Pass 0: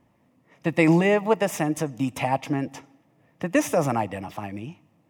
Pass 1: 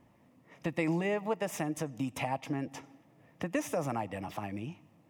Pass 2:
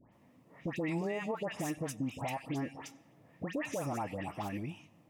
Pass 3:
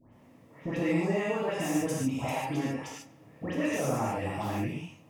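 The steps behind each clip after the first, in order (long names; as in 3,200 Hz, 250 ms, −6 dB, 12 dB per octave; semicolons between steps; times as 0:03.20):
downward compressor 2 to 1, threshold −38 dBFS, peak gain reduction 13 dB
all-pass dispersion highs, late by 125 ms, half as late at 1,800 Hz; brickwall limiter −27.5 dBFS, peak gain reduction 7.5 dB
reverb whose tail is shaped and stops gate 170 ms flat, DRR −5.5 dB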